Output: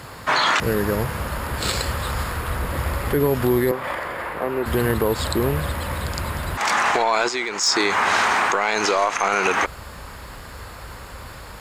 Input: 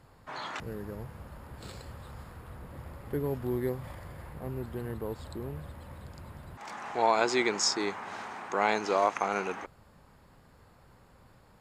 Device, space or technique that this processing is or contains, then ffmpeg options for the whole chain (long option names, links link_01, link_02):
mastering chain: -filter_complex "[0:a]highpass=50,equalizer=frequency=800:width_type=o:width=0.37:gain=-3.5,acompressor=threshold=-34dB:ratio=2,asoftclip=type=tanh:threshold=-20.5dB,tiltshelf=frequency=690:gain=-4.5,asoftclip=type=hard:threshold=-21dB,alimiter=level_in=30dB:limit=-1dB:release=50:level=0:latency=1,asettb=1/sr,asplit=3[link_01][link_02][link_03];[link_01]atrim=end=3.714[link_04];[link_02]atrim=start=3.71:end=4.66,asetpts=PTS-STARTPTS,afade=type=in:duration=0.004:curve=qsin,afade=type=out:start_time=0.946:duration=0.004:curve=qsin,acrossover=split=260 2900:gain=0.112 1 0.224[link_05][link_06][link_07];[link_05][link_06][link_07]amix=inputs=3:normalize=0[link_08];[link_03]atrim=start=4.656[link_09];[link_04][link_08]acrossfade=duration=0.004:curve1=hsin:curve2=qsin[link_10];[link_10][link_09]acrossfade=duration=0.004:curve1=qsin:curve2=hsin,asplit=3[link_11][link_12][link_13];[link_11]afade=type=out:start_time=7.27:duration=0.02[link_14];[link_12]agate=range=-33dB:threshold=-4dB:ratio=3:detection=peak,afade=type=in:start_time=7.27:duration=0.02,afade=type=out:start_time=7.67:duration=0.02[link_15];[link_13]afade=type=in:start_time=7.67:duration=0.02[link_16];[link_14][link_15][link_16]amix=inputs=3:normalize=0,asubboost=boost=6:cutoff=59,volume=-8dB"